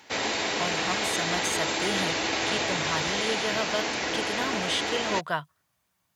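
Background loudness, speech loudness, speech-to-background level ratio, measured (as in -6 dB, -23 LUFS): -27.5 LUFS, -32.5 LUFS, -5.0 dB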